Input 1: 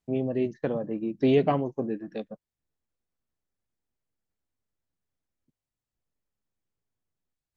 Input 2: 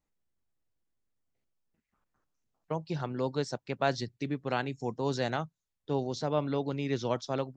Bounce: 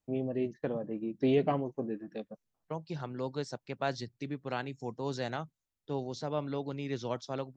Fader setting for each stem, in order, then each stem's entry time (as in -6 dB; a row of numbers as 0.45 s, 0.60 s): -5.5 dB, -4.5 dB; 0.00 s, 0.00 s